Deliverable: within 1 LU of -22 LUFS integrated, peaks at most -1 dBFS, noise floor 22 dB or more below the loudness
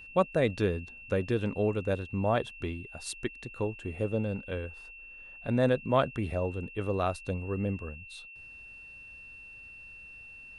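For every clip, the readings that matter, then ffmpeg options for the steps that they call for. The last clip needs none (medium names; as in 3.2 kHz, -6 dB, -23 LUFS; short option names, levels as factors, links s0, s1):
steady tone 2.7 kHz; tone level -46 dBFS; loudness -31.5 LUFS; peak level -12.5 dBFS; loudness target -22.0 LUFS
-> -af "bandreject=f=2700:w=30"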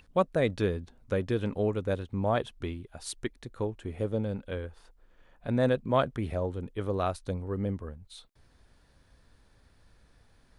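steady tone not found; loudness -31.5 LUFS; peak level -12.5 dBFS; loudness target -22.0 LUFS
-> -af "volume=2.99"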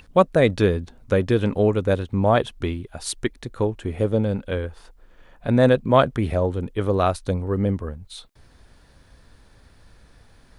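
loudness -22.0 LUFS; peak level -3.0 dBFS; noise floor -54 dBFS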